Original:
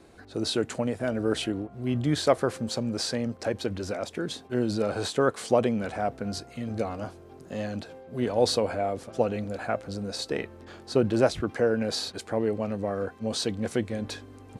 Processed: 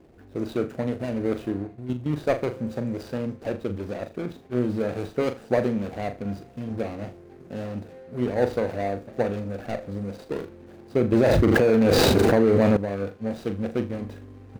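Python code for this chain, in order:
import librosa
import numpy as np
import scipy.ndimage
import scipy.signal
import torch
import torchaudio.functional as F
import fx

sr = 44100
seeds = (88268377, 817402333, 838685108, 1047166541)

p1 = scipy.ndimage.median_filter(x, 41, mode='constant')
p2 = fx.level_steps(p1, sr, step_db=13, at=(1.67, 2.16))
p3 = p2 + fx.room_flutter(p2, sr, wall_m=6.9, rt60_s=0.26, dry=0)
p4 = fx.env_flatten(p3, sr, amount_pct=100, at=(11.12, 12.77))
y = p4 * 10.0 ** (1.5 / 20.0)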